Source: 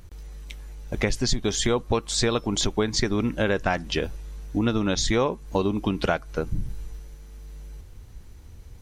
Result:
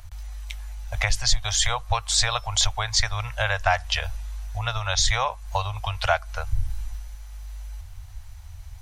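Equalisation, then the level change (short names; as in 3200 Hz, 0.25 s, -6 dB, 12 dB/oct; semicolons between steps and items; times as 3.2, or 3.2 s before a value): elliptic band-stop 100–680 Hz, stop band 50 dB; +5.0 dB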